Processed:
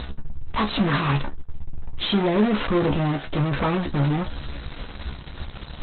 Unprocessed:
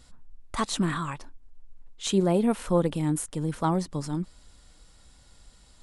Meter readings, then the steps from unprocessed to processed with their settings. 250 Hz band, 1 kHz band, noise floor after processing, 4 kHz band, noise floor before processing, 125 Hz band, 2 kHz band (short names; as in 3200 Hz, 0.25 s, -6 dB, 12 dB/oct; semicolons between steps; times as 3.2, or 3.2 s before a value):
+4.0 dB, +5.0 dB, -38 dBFS, +7.5 dB, -56 dBFS, +6.5 dB, +10.5 dB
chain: in parallel at -4 dB: fuzz box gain 51 dB, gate -57 dBFS; on the sum: high shelf 8800 Hz -12 dB; resonator 70 Hz, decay 0.16 s, harmonics all, mix 100%; upward compressor, threshold -31 dBFS; gain +1.5 dB; Opus 8 kbps 48000 Hz